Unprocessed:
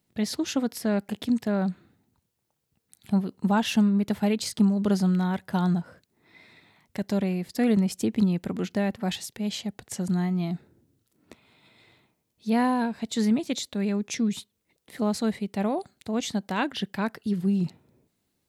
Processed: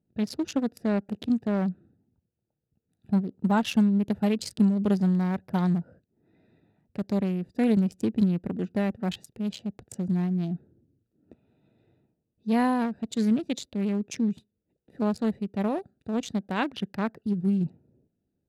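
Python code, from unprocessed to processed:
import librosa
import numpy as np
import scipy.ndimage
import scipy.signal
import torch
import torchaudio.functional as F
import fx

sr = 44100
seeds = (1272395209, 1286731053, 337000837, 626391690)

y = fx.wiener(x, sr, points=41)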